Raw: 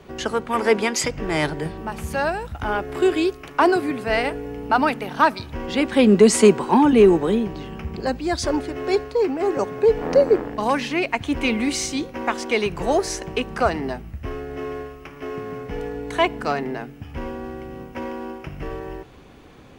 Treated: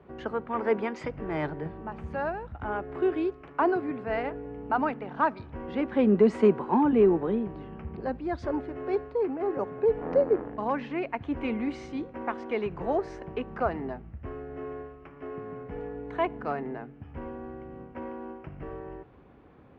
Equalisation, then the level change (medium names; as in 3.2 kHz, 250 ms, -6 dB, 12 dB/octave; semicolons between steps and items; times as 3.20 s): high-pass 45 Hz; low-pass 1.6 kHz 12 dB/octave; -7.5 dB